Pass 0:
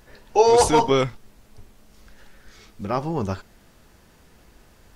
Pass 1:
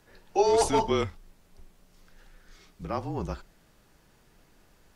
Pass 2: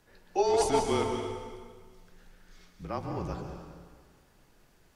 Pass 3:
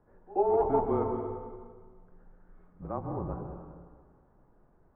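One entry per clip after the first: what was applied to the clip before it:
frequency shift -32 Hz; gain -7 dB
plate-style reverb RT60 1.7 s, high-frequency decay 0.9×, pre-delay 0.115 s, DRR 4 dB; gain -3.5 dB
LPF 1200 Hz 24 dB/oct; pre-echo 83 ms -23 dB

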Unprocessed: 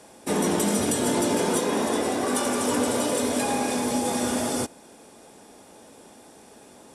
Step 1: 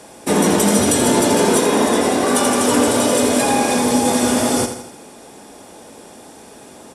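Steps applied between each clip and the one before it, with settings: feedback echo 82 ms, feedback 49%, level -9 dB; gain +8.5 dB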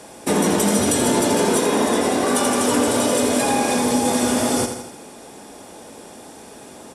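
compressor 1.5:1, threshold -20 dBFS, peak gain reduction 4 dB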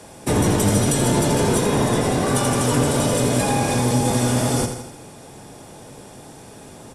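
octaver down 1 oct, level +2 dB; gain -2 dB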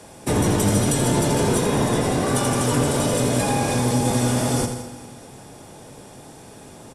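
feedback echo 0.2 s, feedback 58%, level -18.5 dB; gain -1.5 dB

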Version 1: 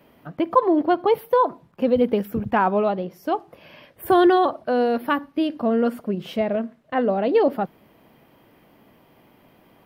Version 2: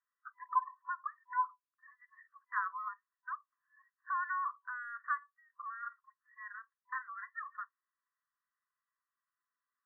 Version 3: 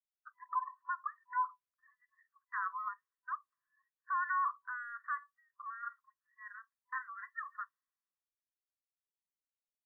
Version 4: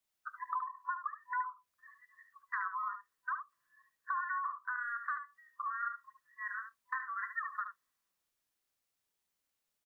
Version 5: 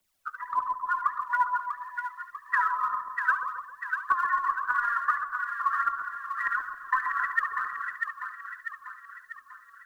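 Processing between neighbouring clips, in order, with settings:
spectral noise reduction 25 dB; FFT band-pass 1000–2000 Hz; compressor 1.5:1, threshold -40 dBFS, peak gain reduction 10 dB; gain -3 dB
limiter -30 dBFS, peak gain reduction 9.5 dB; three-band expander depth 70%; gain +1 dB
compressor 6:1, threshold -45 dBFS, peak gain reduction 15 dB; on a send: echo 73 ms -8.5 dB; on the sum: gain +10 dB
phaser 1.7 Hz, delay 2.4 ms, feedback 64%; split-band echo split 1200 Hz, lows 0.134 s, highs 0.644 s, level -4.5 dB; frequency shift -16 Hz; gain +7.5 dB

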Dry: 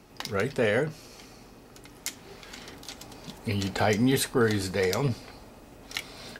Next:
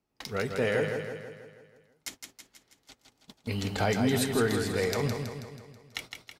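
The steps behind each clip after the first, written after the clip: gate -38 dBFS, range -24 dB; on a send: feedback echo 0.162 s, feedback 54%, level -6 dB; on the sum: gain -3.5 dB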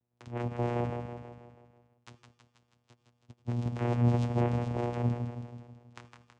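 dynamic EQ 5100 Hz, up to -6 dB, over -52 dBFS, Q 1.1; vocoder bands 4, saw 120 Hz; on a send at -19 dB: reverb RT60 0.65 s, pre-delay 76 ms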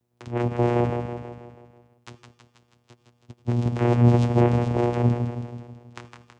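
bell 370 Hz +4.5 dB 0.4 oct; gain +8.5 dB

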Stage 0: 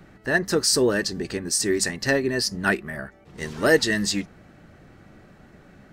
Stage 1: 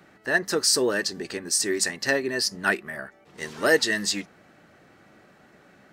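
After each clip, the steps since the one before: HPF 430 Hz 6 dB/oct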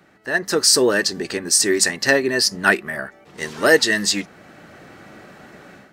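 AGC gain up to 12 dB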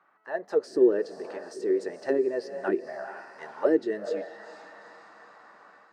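diffused feedback echo 0.451 s, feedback 51%, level -12.5 dB; auto-wah 340–1100 Hz, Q 4, down, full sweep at -11 dBFS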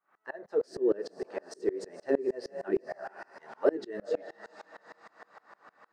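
flange 1.1 Hz, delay 4.2 ms, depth 4.6 ms, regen -72%; dB-ramp tremolo swelling 6.5 Hz, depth 28 dB; gain +8.5 dB

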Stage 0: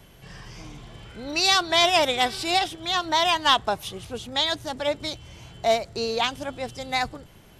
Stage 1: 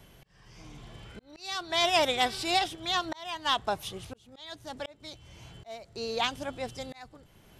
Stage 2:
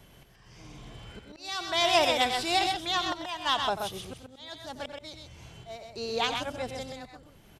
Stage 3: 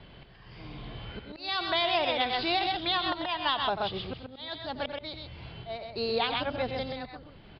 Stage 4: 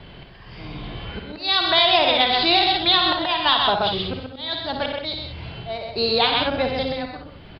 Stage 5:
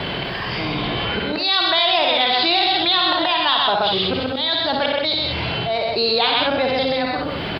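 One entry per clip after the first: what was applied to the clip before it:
auto swell 0.631 s; gain -4 dB
loudspeakers at several distances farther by 31 m -12 dB, 44 m -5 dB
steep low-pass 4800 Hz 96 dB/oct; compressor 5:1, threshold -29 dBFS, peak gain reduction 10 dB; gain +4.5 dB
dynamic EQ 3900 Hz, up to +6 dB, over -45 dBFS, Q 3.4; on a send: early reflections 54 ms -8.5 dB, 65 ms -9 dB; on the sum: gain +8 dB
HPF 270 Hz 6 dB/oct; fast leveller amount 70%; gain -1.5 dB

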